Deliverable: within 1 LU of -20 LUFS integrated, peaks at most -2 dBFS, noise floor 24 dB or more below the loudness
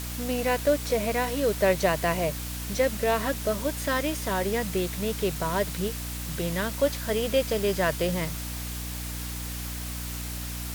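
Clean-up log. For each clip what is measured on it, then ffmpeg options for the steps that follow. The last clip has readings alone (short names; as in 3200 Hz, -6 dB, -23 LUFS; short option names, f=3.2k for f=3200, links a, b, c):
hum 60 Hz; harmonics up to 300 Hz; hum level -33 dBFS; noise floor -34 dBFS; noise floor target -52 dBFS; loudness -27.5 LUFS; peak -11.5 dBFS; loudness target -20.0 LUFS
-> -af "bandreject=f=60:t=h:w=4,bandreject=f=120:t=h:w=4,bandreject=f=180:t=h:w=4,bandreject=f=240:t=h:w=4,bandreject=f=300:t=h:w=4"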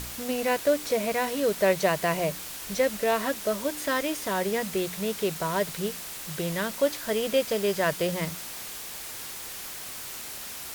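hum none; noise floor -39 dBFS; noise floor target -52 dBFS
-> -af "afftdn=nr=13:nf=-39"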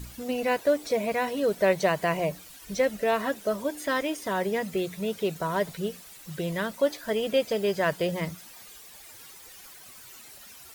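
noise floor -48 dBFS; noise floor target -52 dBFS
-> -af "afftdn=nr=6:nf=-48"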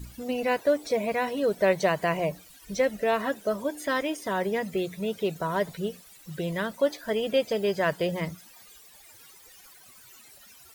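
noise floor -53 dBFS; loudness -28.0 LUFS; peak -12.0 dBFS; loudness target -20.0 LUFS
-> -af "volume=8dB"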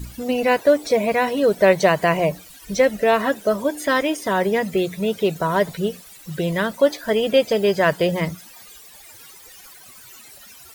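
loudness -20.0 LUFS; peak -4.0 dBFS; noise floor -45 dBFS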